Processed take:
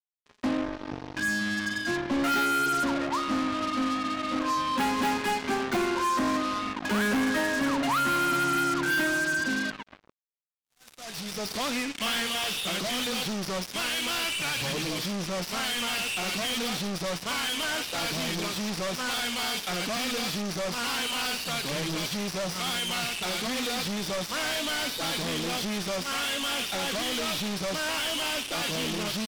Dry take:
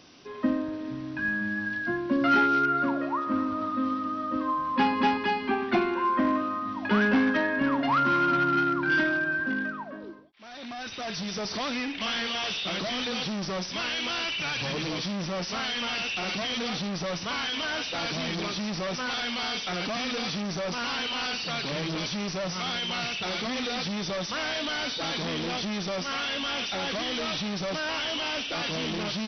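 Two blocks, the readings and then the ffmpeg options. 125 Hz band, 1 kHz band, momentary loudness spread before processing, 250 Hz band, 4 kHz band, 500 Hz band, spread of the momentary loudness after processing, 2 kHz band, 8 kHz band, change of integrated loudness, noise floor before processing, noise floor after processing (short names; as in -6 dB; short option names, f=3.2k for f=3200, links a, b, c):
-1.0 dB, -1.0 dB, 7 LU, -1.5 dB, +1.0 dB, -1.0 dB, 6 LU, -0.5 dB, n/a, 0.0 dB, -38 dBFS, -55 dBFS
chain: -af "volume=25dB,asoftclip=hard,volume=-25dB,acrusher=bits=4:mix=0:aa=0.5"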